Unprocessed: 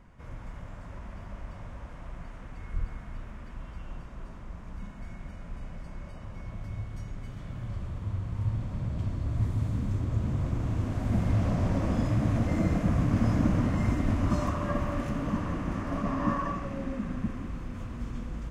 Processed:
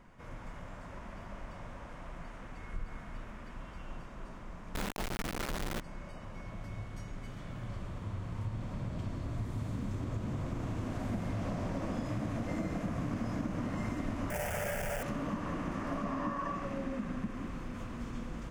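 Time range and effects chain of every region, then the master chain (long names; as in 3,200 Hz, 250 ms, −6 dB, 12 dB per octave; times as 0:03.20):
0:04.75–0:05.80: high-shelf EQ 3,100 Hz −8.5 dB + log-companded quantiser 2 bits
0:14.30–0:15.03: log-companded quantiser 2 bits + phaser with its sweep stopped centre 1,100 Hz, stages 6
whole clip: parametric band 63 Hz −10 dB 2.3 octaves; downward compressor, threshold −33 dBFS; level +1 dB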